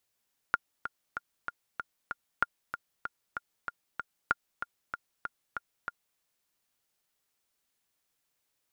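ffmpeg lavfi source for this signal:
-f lavfi -i "aevalsrc='pow(10,(-11-10*gte(mod(t,6*60/191),60/191))/20)*sin(2*PI*1410*mod(t,60/191))*exp(-6.91*mod(t,60/191)/0.03)':d=5.65:s=44100"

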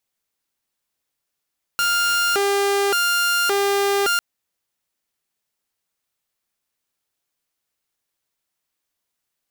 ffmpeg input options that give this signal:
-f lavfi -i "aevalsrc='0.188*(2*mod((900*t+500/0.88*(0.5-abs(mod(0.88*t,1)-0.5))),1)-1)':d=2.4:s=44100"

